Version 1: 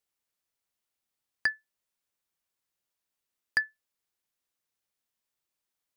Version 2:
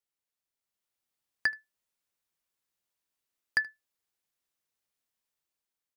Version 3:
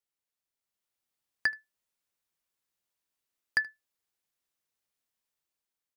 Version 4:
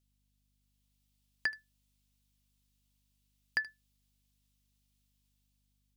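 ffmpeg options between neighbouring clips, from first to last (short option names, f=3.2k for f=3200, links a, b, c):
-af "dynaudnorm=f=220:g=7:m=6dB,aecho=1:1:77:0.0668,volume=-6.5dB"
-af anull
-filter_complex "[0:a]acrossover=split=3400[a][b];[b]acompressor=threshold=-50dB:ratio=4:attack=1:release=60[c];[a][c]amix=inputs=2:normalize=0,highshelf=f=2.3k:t=q:w=1.5:g=8,aeval=exprs='val(0)+0.000224*(sin(2*PI*50*n/s)+sin(2*PI*2*50*n/s)/2+sin(2*PI*3*50*n/s)/3+sin(2*PI*4*50*n/s)/4+sin(2*PI*5*50*n/s)/5)':c=same,volume=-3dB"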